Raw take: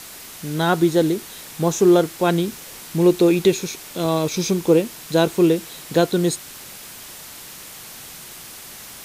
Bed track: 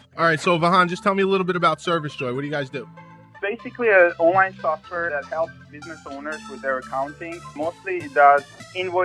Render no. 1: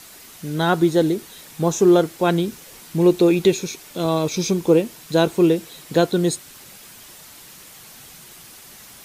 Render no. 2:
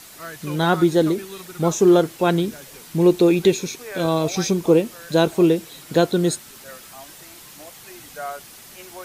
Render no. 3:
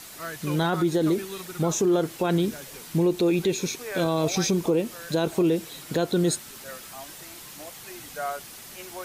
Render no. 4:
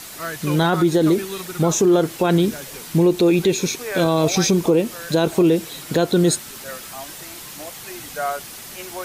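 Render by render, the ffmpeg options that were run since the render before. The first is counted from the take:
ffmpeg -i in.wav -af "afftdn=noise_reduction=6:noise_floor=-39" out.wav
ffmpeg -i in.wav -i bed.wav -filter_complex "[1:a]volume=-18dB[link_01];[0:a][link_01]amix=inputs=2:normalize=0" out.wav
ffmpeg -i in.wav -af "acompressor=threshold=-16dB:ratio=4,alimiter=limit=-15dB:level=0:latency=1:release=26" out.wav
ffmpeg -i in.wav -af "volume=6.5dB" out.wav

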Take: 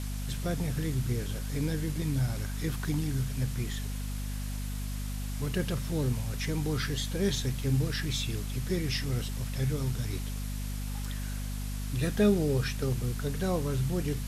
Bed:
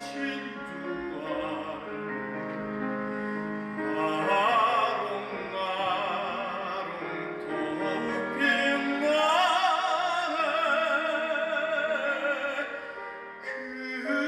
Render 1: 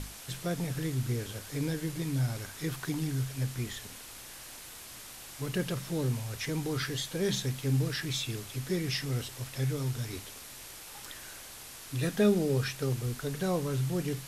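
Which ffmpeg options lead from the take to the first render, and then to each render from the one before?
ffmpeg -i in.wav -af "bandreject=frequency=50:width_type=h:width=6,bandreject=frequency=100:width_type=h:width=6,bandreject=frequency=150:width_type=h:width=6,bandreject=frequency=200:width_type=h:width=6,bandreject=frequency=250:width_type=h:width=6" out.wav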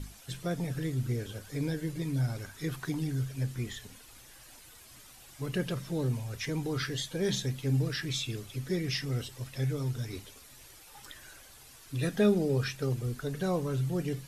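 ffmpeg -i in.wav -af "afftdn=noise_reduction=10:noise_floor=-47" out.wav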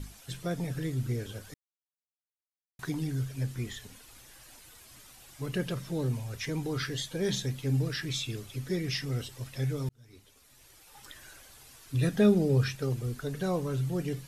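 ffmpeg -i in.wav -filter_complex "[0:a]asettb=1/sr,asplit=3[link_01][link_02][link_03];[link_01]atrim=end=11.944[link_04];[link_02]atrim=start=11.94:end=12.76,asetpts=PTS-STARTPTS,afade=type=in:duration=0.004:curve=qsin,afade=type=out:start_time=0.816:duration=0.004:curve=qsin,equalizer=frequency=92:width=0.5:gain=6[link_05];[link_03]atrim=start=12.756[link_06];[link_04][link_05]acrossfade=duration=0.004:curve1=hsin:curve2=qsin[link_07];[link_07][link_06]acrossfade=duration=0.004:curve1=qsin:curve2=hsin,asplit=4[link_08][link_09][link_10][link_11];[link_08]atrim=end=1.54,asetpts=PTS-STARTPTS,afade=type=out:start_time=1.536:duration=0.004:curve=hsin[link_12];[link_09]atrim=start=1.54:end=2.79,asetpts=PTS-STARTPTS,volume=0[link_13];[link_10]atrim=start=2.79:end=9.89,asetpts=PTS-STARTPTS,afade=type=in:duration=0.004:curve=hsin,afade=type=out:start_time=7.096:duration=0.004:curve=hsin[link_14];[link_11]atrim=start=9.89,asetpts=PTS-STARTPTS,afade=type=in:duration=1.33[link_15];[link_12][link_13][link_14][link_15]concat=n=4:v=0:a=1" out.wav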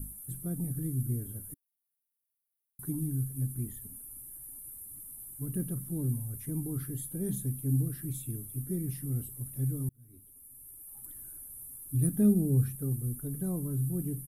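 ffmpeg -i in.wav -af "firequalizer=gain_entry='entry(280,0);entry(490,-15);entry(870,-15);entry(2200,-24);entry(5400,-27);entry(9800,13)':delay=0.05:min_phase=1" out.wav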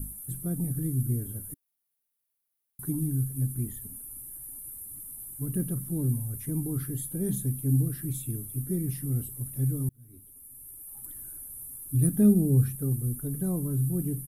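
ffmpeg -i in.wav -af "volume=4dB" out.wav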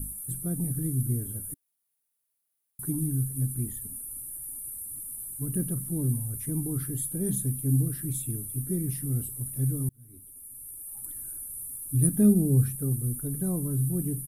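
ffmpeg -i in.wav -af "equalizer=frequency=9300:width_type=o:width=0.62:gain=6" out.wav

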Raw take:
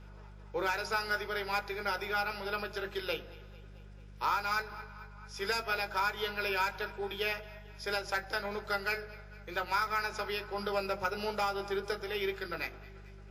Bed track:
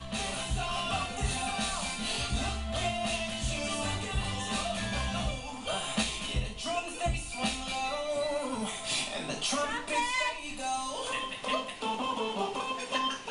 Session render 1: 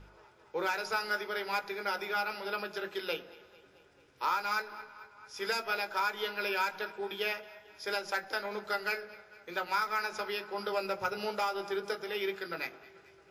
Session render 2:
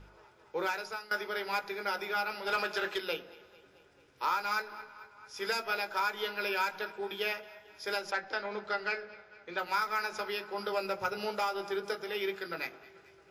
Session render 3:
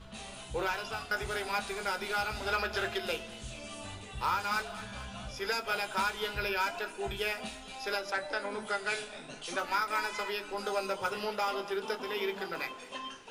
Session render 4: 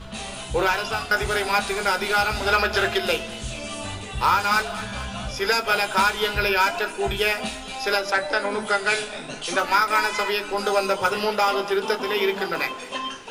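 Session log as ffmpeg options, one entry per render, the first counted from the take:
ffmpeg -i in.wav -af "bandreject=frequency=50:width_type=h:width=4,bandreject=frequency=100:width_type=h:width=4,bandreject=frequency=150:width_type=h:width=4,bandreject=frequency=200:width_type=h:width=4" out.wav
ffmpeg -i in.wav -filter_complex "[0:a]asplit=3[link_01][link_02][link_03];[link_01]afade=type=out:start_time=2.46:duration=0.02[link_04];[link_02]asplit=2[link_05][link_06];[link_06]highpass=frequency=720:poles=1,volume=14dB,asoftclip=type=tanh:threshold=-21dB[link_07];[link_05][link_07]amix=inputs=2:normalize=0,lowpass=frequency=6700:poles=1,volume=-6dB,afade=type=in:start_time=2.46:duration=0.02,afade=type=out:start_time=2.97:duration=0.02[link_08];[link_03]afade=type=in:start_time=2.97:duration=0.02[link_09];[link_04][link_08][link_09]amix=inputs=3:normalize=0,asettb=1/sr,asplit=3[link_10][link_11][link_12];[link_10]atrim=end=8.114[link_13];[link_11]atrim=start=8.11:end=9.59,asetpts=PTS-STARTPTS,afade=type=in:duration=0.004:curve=qsin,afade=type=out:start_time=1.476:duration=0.004:curve=qsin,lowpass=4700[link_14];[link_12]atrim=start=9.586[link_15];[link_13][link_14]acrossfade=duration=0.004:curve1=hsin:curve2=qsin[link_16];[link_16][link_15]acrossfade=duration=0.004:curve1=qsin:curve2=hsin,asplit=2[link_17][link_18];[link_17]atrim=end=1.11,asetpts=PTS-STARTPTS,afade=type=out:start_time=0.64:duration=0.47:silence=0.141254[link_19];[link_18]atrim=start=1.11,asetpts=PTS-STARTPTS,afade=type=in:duration=0.004:curve=hsin:silence=0.141254[link_20];[link_19][link_20]concat=n=2:v=0:a=1" out.wav
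ffmpeg -i in.wav -i bed.wav -filter_complex "[1:a]volume=-11dB[link_01];[0:a][link_01]amix=inputs=2:normalize=0" out.wav
ffmpeg -i in.wav -af "volume=11.5dB" out.wav

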